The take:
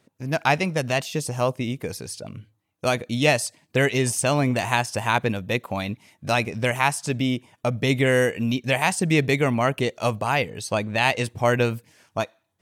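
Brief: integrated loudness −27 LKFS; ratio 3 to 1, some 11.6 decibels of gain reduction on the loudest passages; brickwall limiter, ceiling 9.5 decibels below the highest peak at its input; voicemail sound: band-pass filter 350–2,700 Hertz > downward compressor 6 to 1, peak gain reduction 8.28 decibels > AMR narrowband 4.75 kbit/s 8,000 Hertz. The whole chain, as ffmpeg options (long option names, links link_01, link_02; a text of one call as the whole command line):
ffmpeg -i in.wav -af "acompressor=threshold=-31dB:ratio=3,alimiter=limit=-24dB:level=0:latency=1,highpass=350,lowpass=2700,acompressor=threshold=-38dB:ratio=6,volume=18.5dB" -ar 8000 -c:a libopencore_amrnb -b:a 4750 out.amr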